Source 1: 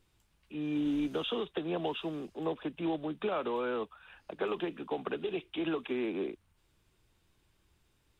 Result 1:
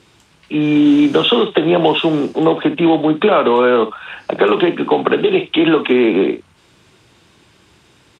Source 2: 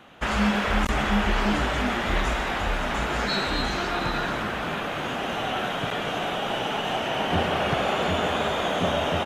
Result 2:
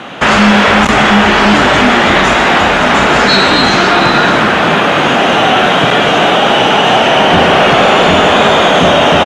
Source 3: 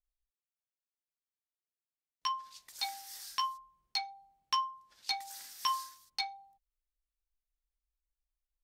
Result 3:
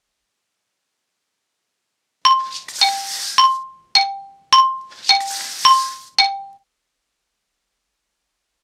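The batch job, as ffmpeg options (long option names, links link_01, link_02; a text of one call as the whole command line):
ffmpeg -i in.wav -filter_complex "[0:a]aecho=1:1:32|58:0.168|0.211,asplit=2[link_01][link_02];[link_02]acompressor=threshold=-36dB:ratio=6,volume=1.5dB[link_03];[link_01][link_03]amix=inputs=2:normalize=0,highpass=130,lowpass=7600,apsyclip=18.5dB,volume=-1.5dB" out.wav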